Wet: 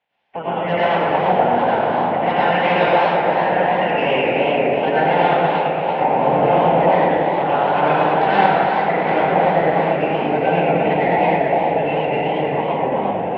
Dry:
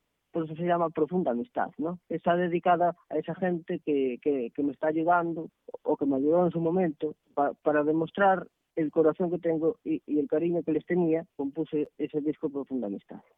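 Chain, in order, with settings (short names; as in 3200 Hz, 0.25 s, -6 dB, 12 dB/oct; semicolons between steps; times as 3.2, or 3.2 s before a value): spectral limiter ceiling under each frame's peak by 20 dB; bell 370 Hz -8 dB 0.62 oct; in parallel at +1.5 dB: compressor, threshold -30 dBFS, peak gain reduction 11.5 dB; on the sum: wavefolder -16.5 dBFS; speaker cabinet 110–3000 Hz, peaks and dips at 120 Hz -8 dB, 200 Hz -3 dB, 280 Hz -5 dB, 510 Hz +5 dB, 800 Hz +10 dB, 1200 Hz -9 dB; on a send: delay with a stepping band-pass 0.489 s, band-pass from 340 Hz, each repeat 1.4 oct, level -5 dB; on the sum: plate-style reverb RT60 2 s, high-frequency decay 0.9×, pre-delay 80 ms, DRR -9.5 dB; warbling echo 0.112 s, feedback 78%, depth 211 cents, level -7.5 dB; gain -3.5 dB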